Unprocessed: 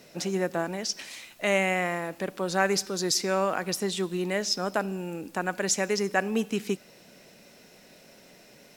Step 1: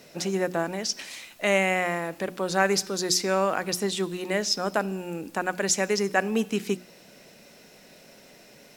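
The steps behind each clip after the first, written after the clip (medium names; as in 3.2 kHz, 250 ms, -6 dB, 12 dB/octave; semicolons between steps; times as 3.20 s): hum notches 60/120/180/240/300/360 Hz; trim +2 dB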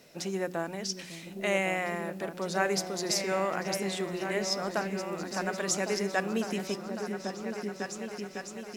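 delay with an opening low-pass 553 ms, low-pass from 200 Hz, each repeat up 2 oct, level -3 dB; trim -6 dB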